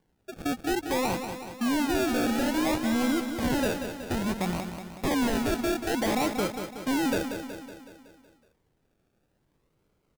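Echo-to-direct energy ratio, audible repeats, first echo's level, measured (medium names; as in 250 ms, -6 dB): -6.5 dB, 6, -8.0 dB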